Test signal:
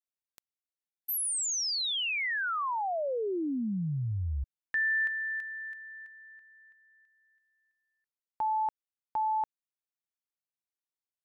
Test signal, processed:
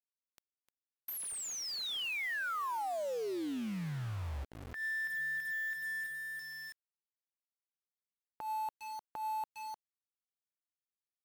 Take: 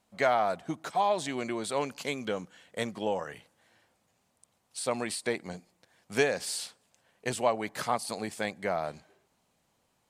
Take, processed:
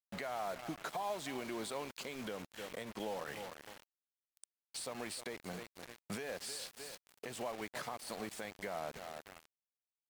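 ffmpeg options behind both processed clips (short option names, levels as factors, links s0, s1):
-af "highpass=71,equalizer=f=6700:t=o:w=1.9:g=2,aecho=1:1:304|608:0.0944|0.0245,acompressor=threshold=0.00631:ratio=6:attack=5.4:release=441:knee=6:detection=peak,acrusher=bits=8:mix=0:aa=0.000001,alimiter=level_in=4.73:limit=0.0631:level=0:latency=1:release=106,volume=0.211,bass=f=250:g=-2,treble=f=4000:g=-5,volume=2.66" -ar 44100 -c:a libmp3lame -b:a 128k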